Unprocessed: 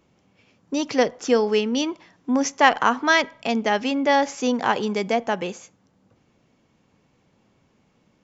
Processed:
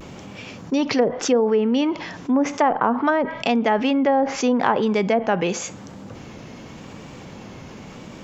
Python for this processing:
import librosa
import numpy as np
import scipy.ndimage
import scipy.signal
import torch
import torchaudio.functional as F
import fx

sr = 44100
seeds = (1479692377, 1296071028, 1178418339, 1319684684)

y = fx.env_lowpass_down(x, sr, base_hz=780.0, full_db=-14.5)
y = fx.vibrato(y, sr, rate_hz=0.89, depth_cents=59.0)
y = fx.env_flatten(y, sr, amount_pct=50)